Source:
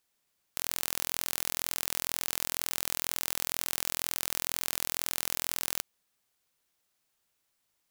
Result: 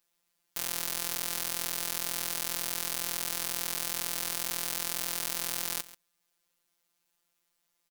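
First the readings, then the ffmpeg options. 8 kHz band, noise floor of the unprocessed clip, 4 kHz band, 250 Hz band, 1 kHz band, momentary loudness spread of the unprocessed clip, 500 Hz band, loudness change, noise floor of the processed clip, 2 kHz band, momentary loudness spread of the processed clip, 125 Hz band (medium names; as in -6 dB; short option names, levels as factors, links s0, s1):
0.0 dB, -78 dBFS, 0.0 dB, +1.0 dB, 0.0 dB, 2 LU, +0.5 dB, 0.0 dB, -79 dBFS, -0.5 dB, 2 LU, 0.0 dB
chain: -af "aecho=1:1:137:0.141,afftfilt=real='hypot(re,im)*cos(PI*b)':imag='0':win_size=1024:overlap=0.75,volume=1.41"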